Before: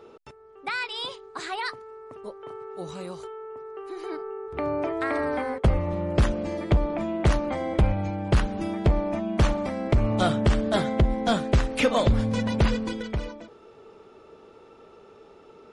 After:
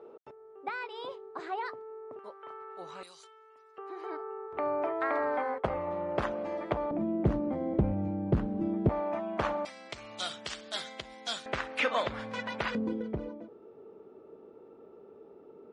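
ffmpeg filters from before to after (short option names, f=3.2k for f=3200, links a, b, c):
-af "asetnsamples=n=441:p=0,asendcmd='2.19 bandpass f 1400;3.03 bandpass f 5300;3.78 bandpass f 940;6.91 bandpass f 250;8.89 bandpass f 1000;9.65 bandpass f 5000;11.46 bandpass f 1600;12.75 bandpass f 320',bandpass=f=540:t=q:w=0.96:csg=0"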